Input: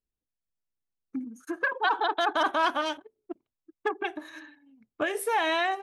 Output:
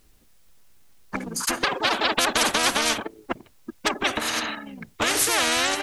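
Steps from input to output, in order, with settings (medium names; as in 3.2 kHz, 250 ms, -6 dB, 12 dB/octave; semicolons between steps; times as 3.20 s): harmony voices -5 st -3 dB; spectrum-flattening compressor 4:1; trim +5.5 dB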